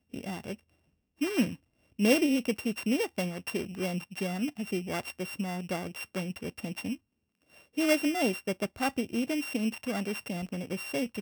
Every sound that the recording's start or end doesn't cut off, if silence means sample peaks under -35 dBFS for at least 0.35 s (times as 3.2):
1.21–1.54
1.99–6.95